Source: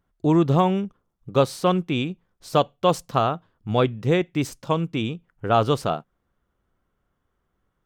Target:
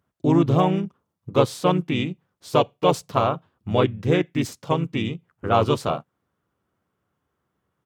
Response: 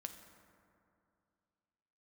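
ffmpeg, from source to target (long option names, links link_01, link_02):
-filter_complex "[0:a]highpass=frequency=83:width=0.5412,highpass=frequency=83:width=1.3066,asplit=2[link_01][link_02];[link_02]asetrate=37084,aresample=44100,atempo=1.18921,volume=-4dB[link_03];[link_01][link_03]amix=inputs=2:normalize=0,volume=-1dB"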